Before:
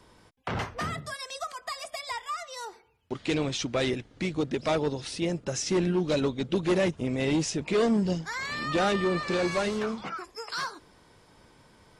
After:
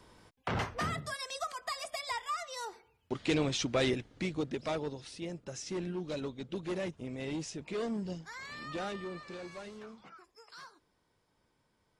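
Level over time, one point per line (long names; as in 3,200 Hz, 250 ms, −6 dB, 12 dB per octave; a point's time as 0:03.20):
0:03.90 −2 dB
0:05.13 −11.5 dB
0:08.68 −11.5 dB
0:09.46 −18 dB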